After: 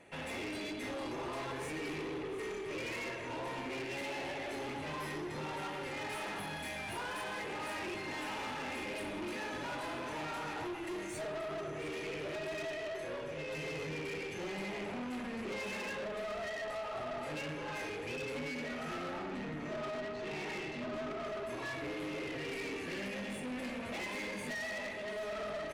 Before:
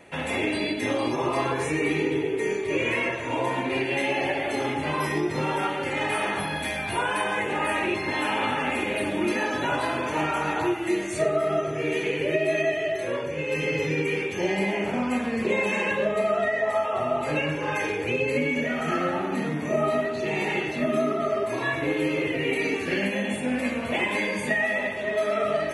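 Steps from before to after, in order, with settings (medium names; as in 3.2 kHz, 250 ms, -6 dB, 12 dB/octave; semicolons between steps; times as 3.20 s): 19.18–21.26 s: low-pass 5.6 kHz 12 dB/octave; valve stage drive 30 dB, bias 0.35; delay 709 ms -14.5 dB; trim -7.5 dB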